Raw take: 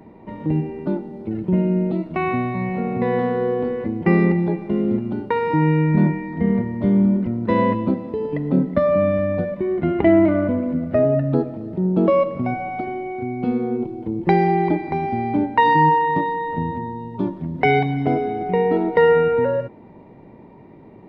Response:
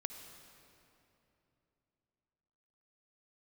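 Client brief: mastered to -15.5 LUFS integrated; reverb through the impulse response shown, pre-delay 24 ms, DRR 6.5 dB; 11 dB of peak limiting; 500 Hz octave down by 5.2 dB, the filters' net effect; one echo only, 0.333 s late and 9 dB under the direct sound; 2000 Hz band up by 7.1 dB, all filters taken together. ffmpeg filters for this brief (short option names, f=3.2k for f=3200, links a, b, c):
-filter_complex "[0:a]equalizer=f=500:t=o:g=-7,equalizer=f=2k:t=o:g=8,alimiter=limit=-14dB:level=0:latency=1,aecho=1:1:333:0.355,asplit=2[a][b];[1:a]atrim=start_sample=2205,adelay=24[c];[b][c]afir=irnorm=-1:irlink=0,volume=-5dB[d];[a][d]amix=inputs=2:normalize=0,volume=7dB"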